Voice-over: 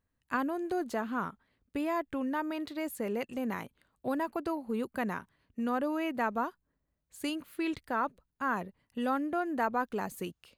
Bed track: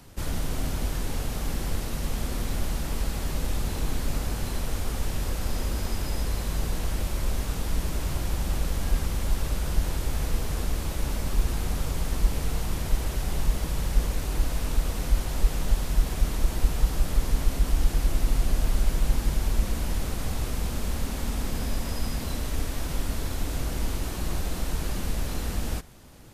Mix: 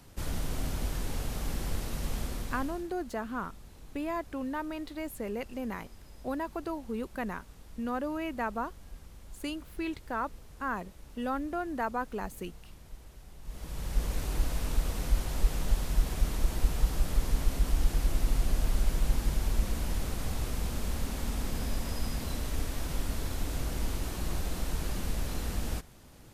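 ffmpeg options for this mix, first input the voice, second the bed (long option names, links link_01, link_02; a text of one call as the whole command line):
ffmpeg -i stem1.wav -i stem2.wav -filter_complex "[0:a]adelay=2200,volume=-2dB[link_01];[1:a]volume=14dB,afade=type=out:start_time=2.17:duration=0.74:silence=0.125893,afade=type=in:start_time=13.42:duration=0.76:silence=0.11885[link_02];[link_01][link_02]amix=inputs=2:normalize=0" out.wav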